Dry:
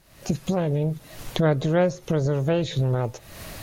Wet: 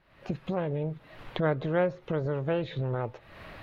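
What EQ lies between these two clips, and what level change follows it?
high-frequency loss of the air 470 metres
low-shelf EQ 440 Hz −11 dB
parametric band 680 Hz −2.5 dB 0.44 octaves
+1.5 dB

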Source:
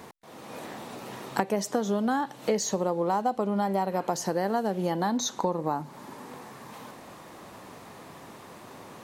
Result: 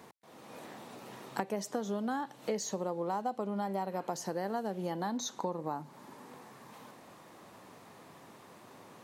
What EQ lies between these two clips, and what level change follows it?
high-pass filter 83 Hz
−8.0 dB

